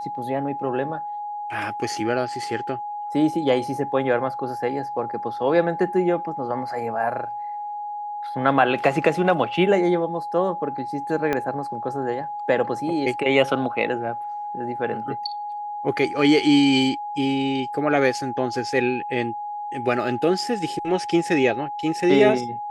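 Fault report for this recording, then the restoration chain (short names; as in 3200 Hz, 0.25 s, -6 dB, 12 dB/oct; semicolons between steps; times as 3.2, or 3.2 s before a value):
tone 830 Hz -28 dBFS
11.33 pop -10 dBFS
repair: de-click; notch 830 Hz, Q 30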